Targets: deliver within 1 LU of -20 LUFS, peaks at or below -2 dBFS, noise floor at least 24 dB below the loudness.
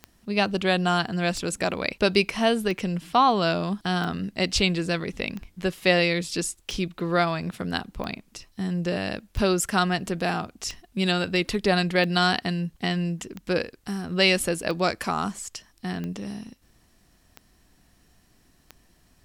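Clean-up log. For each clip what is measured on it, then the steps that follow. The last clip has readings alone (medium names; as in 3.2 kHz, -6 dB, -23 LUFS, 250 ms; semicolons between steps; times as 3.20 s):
clicks found 15; loudness -25.5 LUFS; peak level -5.0 dBFS; loudness target -20.0 LUFS
-> de-click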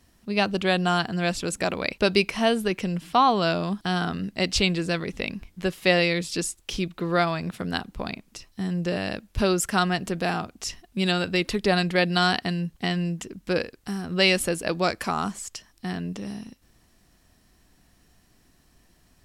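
clicks found 0; loudness -25.5 LUFS; peak level -5.0 dBFS; loudness target -20.0 LUFS
-> trim +5.5 dB; peak limiter -2 dBFS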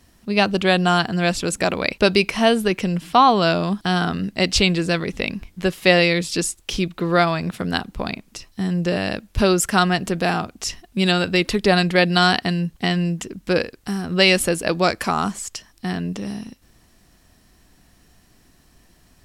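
loudness -20.0 LUFS; peak level -2.0 dBFS; noise floor -56 dBFS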